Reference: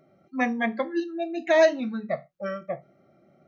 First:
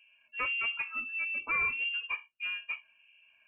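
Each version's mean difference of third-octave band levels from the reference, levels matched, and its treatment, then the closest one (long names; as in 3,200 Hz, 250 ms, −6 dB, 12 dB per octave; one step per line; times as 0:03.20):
10.5 dB: two-band tremolo in antiphase 1.6 Hz, depth 70%, crossover 660 Hz
soft clipping −27 dBFS, distortion −6 dB
notch comb filter 1,100 Hz
voice inversion scrambler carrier 3,000 Hz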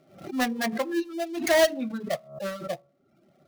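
7.5 dB: gap after every zero crossing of 0.17 ms
hum removal 70.76 Hz, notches 19
reverb reduction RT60 0.7 s
background raised ahead of every attack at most 110 dB per second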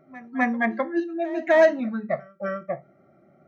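2.0 dB: high shelf with overshoot 2,400 Hz −7.5 dB, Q 1.5
in parallel at −11 dB: hard clipping −16.5 dBFS, distortion −11 dB
on the sum: notch filter 490 Hz, Q 12
echo ahead of the sound 257 ms −19.5 dB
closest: third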